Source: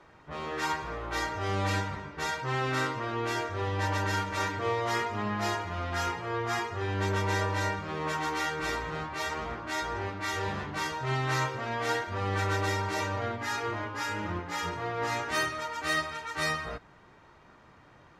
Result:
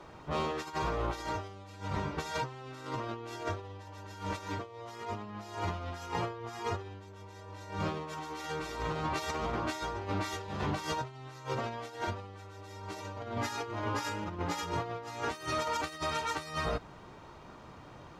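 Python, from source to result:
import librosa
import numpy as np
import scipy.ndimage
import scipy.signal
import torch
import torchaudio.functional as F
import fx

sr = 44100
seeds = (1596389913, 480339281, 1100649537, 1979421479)

y = fx.peak_eq(x, sr, hz=1800.0, db=-7.5, octaves=0.81)
y = fx.over_compress(y, sr, threshold_db=-38.0, ratio=-0.5)
y = y * 10.0 ** (1.5 / 20.0)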